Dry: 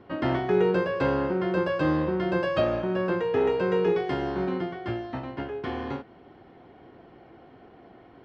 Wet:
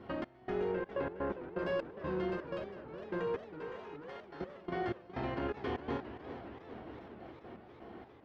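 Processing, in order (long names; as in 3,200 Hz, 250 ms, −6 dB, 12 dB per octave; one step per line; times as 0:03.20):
one-sided soft clipper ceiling −23 dBFS
downward compressor 20 to 1, threshold −38 dBFS, peak gain reduction 18.5 dB
0:03.47–0:04.41: high-pass filter 840 Hz 12 dB per octave
output level in coarse steps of 15 dB
0:00.72–0:01.59: low-pass filter 2,400 Hz 12 dB per octave
convolution reverb RT60 1.7 s, pre-delay 7 ms, DRR 3.5 dB
gate pattern "xx..xxx.x.x.." 125 BPM −24 dB
0:02.25–0:02.90: fade out
feedback echo with a swinging delay time 408 ms, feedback 75%, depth 172 cents, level −12.5 dB
level +7.5 dB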